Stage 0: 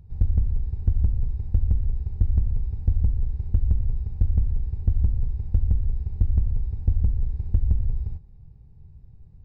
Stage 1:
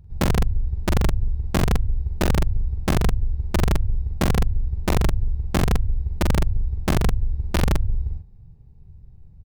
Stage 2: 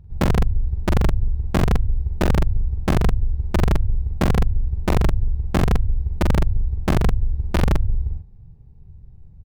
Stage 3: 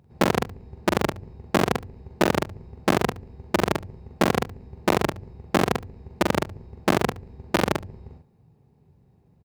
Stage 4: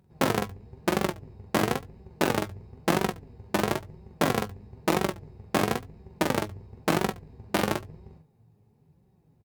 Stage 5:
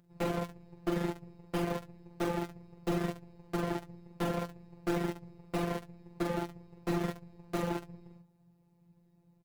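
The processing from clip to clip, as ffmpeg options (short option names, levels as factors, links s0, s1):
-filter_complex "[0:a]aeval=exprs='(mod(4.47*val(0)+1,2)-1)/4.47':c=same,asplit=2[s0][s1];[s1]adelay=44,volume=0.668[s2];[s0][s2]amix=inputs=2:normalize=0"
-af "highshelf=f=3400:g=-7.5,volume=1.26"
-af "highpass=260,aecho=1:1:72:0.106,volume=1.5"
-filter_complex "[0:a]equalizer=f=15000:t=o:w=1.3:g=5.5,asplit=2[s0][s1];[s1]adelay=19,volume=0.282[s2];[s0][s2]amix=inputs=2:normalize=0,flanger=delay=5.2:depth=4.9:regen=48:speed=0.99:shape=sinusoidal"
-af "afftfilt=real='hypot(re,im)*cos(PI*b)':imag='0':win_size=1024:overlap=0.75,volume=15,asoftclip=hard,volume=0.0668"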